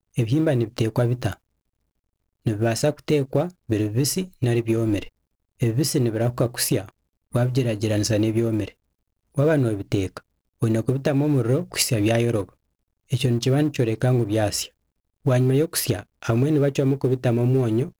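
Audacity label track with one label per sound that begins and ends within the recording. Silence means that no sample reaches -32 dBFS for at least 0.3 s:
2.460000	5.070000	sound
5.610000	6.890000	sound
7.340000	8.680000	sound
9.370000	10.180000	sound
10.620000	12.490000	sound
13.110000	14.660000	sound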